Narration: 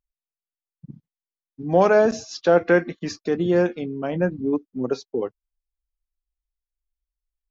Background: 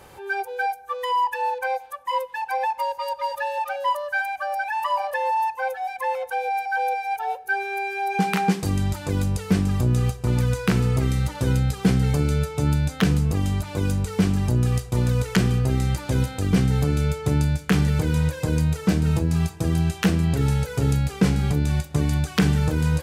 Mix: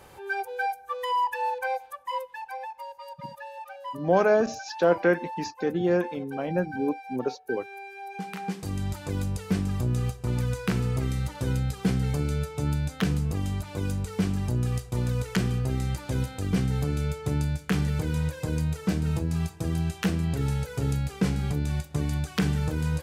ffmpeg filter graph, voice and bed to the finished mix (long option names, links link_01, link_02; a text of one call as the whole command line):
ffmpeg -i stem1.wav -i stem2.wav -filter_complex "[0:a]adelay=2350,volume=-4.5dB[link_01];[1:a]volume=4.5dB,afade=type=out:start_time=1.74:duration=0.96:silence=0.298538,afade=type=in:start_time=8.37:duration=0.56:silence=0.398107[link_02];[link_01][link_02]amix=inputs=2:normalize=0" out.wav